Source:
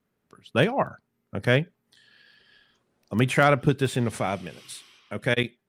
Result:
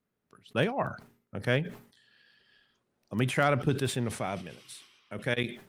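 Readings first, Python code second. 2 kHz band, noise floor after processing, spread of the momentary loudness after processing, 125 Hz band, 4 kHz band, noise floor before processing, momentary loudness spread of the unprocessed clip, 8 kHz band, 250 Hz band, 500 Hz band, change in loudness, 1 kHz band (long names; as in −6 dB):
−6.0 dB, −82 dBFS, 19 LU, −5.5 dB, −5.0 dB, −77 dBFS, 19 LU, −2.5 dB, −5.5 dB, −6.0 dB, −6.0 dB, −6.0 dB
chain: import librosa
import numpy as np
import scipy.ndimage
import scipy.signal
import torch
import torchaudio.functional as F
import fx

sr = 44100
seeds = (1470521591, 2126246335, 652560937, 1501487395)

y = fx.sustainer(x, sr, db_per_s=120.0)
y = F.gain(torch.from_numpy(y), -6.5).numpy()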